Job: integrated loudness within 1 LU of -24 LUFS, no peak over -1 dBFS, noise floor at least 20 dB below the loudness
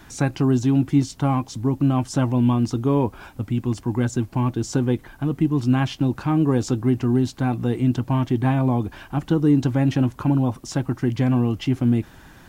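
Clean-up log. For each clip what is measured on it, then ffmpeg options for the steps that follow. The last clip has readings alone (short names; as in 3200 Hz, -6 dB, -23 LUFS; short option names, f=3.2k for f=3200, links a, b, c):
loudness -22.0 LUFS; peak -7.5 dBFS; loudness target -24.0 LUFS
-> -af "volume=-2dB"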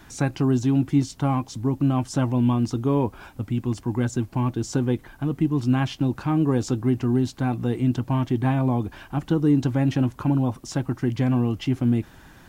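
loudness -24.0 LUFS; peak -9.5 dBFS; noise floor -49 dBFS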